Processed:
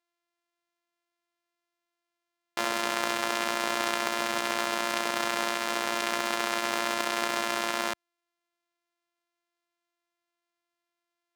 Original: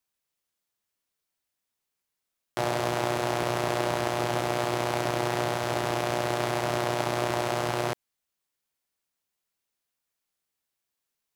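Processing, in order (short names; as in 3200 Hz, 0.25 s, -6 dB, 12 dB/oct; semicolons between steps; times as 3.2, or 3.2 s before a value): sample sorter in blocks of 128 samples; weighting filter A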